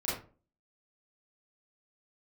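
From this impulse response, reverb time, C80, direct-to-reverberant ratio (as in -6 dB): 0.35 s, 8.0 dB, -9.0 dB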